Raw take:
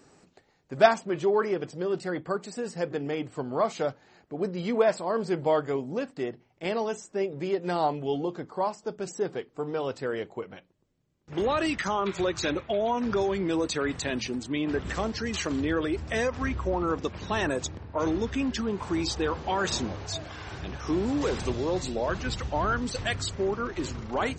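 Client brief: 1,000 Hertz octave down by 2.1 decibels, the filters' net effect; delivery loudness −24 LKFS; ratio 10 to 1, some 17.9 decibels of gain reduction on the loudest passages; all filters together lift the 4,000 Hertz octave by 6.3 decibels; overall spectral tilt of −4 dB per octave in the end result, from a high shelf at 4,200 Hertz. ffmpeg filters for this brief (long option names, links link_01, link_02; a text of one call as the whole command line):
ffmpeg -i in.wav -af "equalizer=frequency=1000:width_type=o:gain=-3.5,equalizer=frequency=4000:width_type=o:gain=4.5,highshelf=frequency=4200:gain=6,acompressor=threshold=-32dB:ratio=10,volume=12.5dB" out.wav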